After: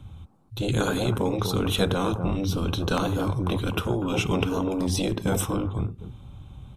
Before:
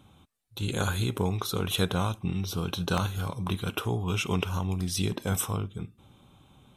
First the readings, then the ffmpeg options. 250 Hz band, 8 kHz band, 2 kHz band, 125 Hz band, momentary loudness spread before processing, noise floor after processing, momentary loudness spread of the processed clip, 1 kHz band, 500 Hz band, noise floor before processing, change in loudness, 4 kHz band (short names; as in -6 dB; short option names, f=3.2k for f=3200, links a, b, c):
+6.0 dB, +0.5 dB, +2.5 dB, +2.5 dB, 5 LU, -46 dBFS, 15 LU, +4.0 dB, +7.0 dB, -60 dBFS, +4.0 dB, +2.0 dB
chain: -filter_complex "[0:a]highshelf=f=11k:g=-7,acrossover=split=110|1300|5200[a][b][c][d];[a]aeval=exprs='0.0473*sin(PI/2*5.62*val(0)/0.0473)':c=same[e];[b]aecho=1:1:93.29|247.8:0.398|0.562[f];[e][f][c][d]amix=inputs=4:normalize=0,volume=2.5dB"